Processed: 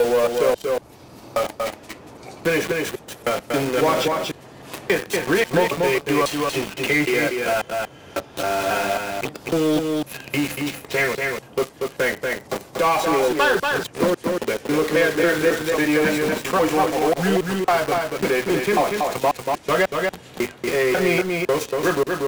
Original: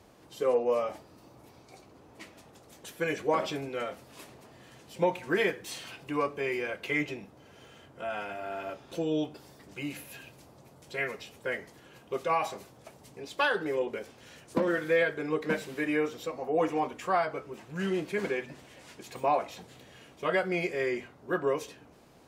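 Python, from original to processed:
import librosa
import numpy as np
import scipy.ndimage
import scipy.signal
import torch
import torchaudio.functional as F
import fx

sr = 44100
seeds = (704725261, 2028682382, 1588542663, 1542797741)

p1 = fx.block_reorder(x, sr, ms=272.0, group=3)
p2 = fx.quant_companded(p1, sr, bits=2)
p3 = p1 + (p2 * 10.0 ** (-4.0 / 20.0))
p4 = p3 + 10.0 ** (-5.0 / 20.0) * np.pad(p3, (int(236 * sr / 1000.0), 0))[:len(p3)]
p5 = fx.band_squash(p4, sr, depth_pct=40)
y = p5 * 10.0 ** (5.0 / 20.0)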